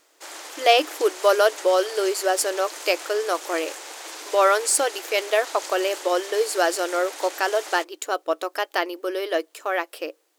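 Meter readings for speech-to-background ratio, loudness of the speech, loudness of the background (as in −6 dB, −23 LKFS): 12.5 dB, −23.0 LKFS, −35.5 LKFS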